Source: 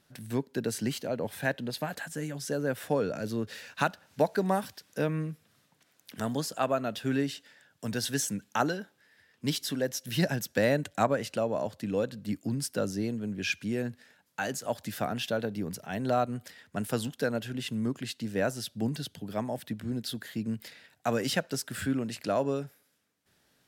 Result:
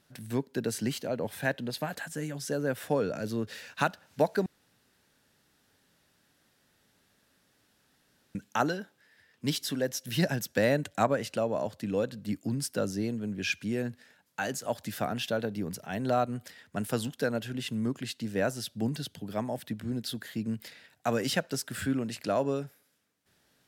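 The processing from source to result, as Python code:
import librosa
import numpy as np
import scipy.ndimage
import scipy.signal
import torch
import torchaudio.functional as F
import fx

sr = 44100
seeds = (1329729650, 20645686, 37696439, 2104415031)

y = fx.edit(x, sr, fx.room_tone_fill(start_s=4.46, length_s=3.89), tone=tone)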